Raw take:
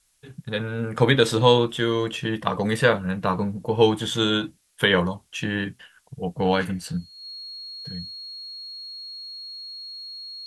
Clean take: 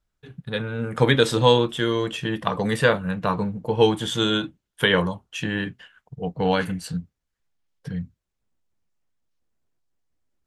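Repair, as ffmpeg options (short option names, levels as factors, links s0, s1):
-af "bandreject=f=4300:w=30,agate=range=0.0891:threshold=0.00708,asetnsamples=n=441:p=0,asendcmd='7.7 volume volume 6.5dB',volume=1"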